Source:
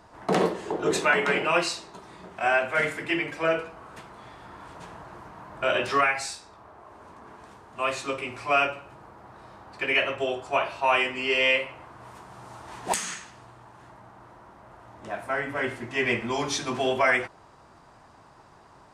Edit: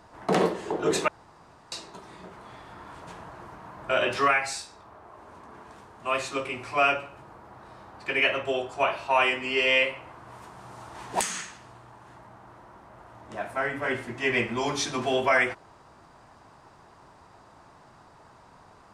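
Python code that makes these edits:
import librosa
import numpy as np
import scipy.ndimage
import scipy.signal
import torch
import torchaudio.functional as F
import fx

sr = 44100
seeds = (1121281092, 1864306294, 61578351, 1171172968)

y = fx.edit(x, sr, fx.room_tone_fill(start_s=1.08, length_s=0.64),
    fx.cut(start_s=2.33, length_s=1.73), tone=tone)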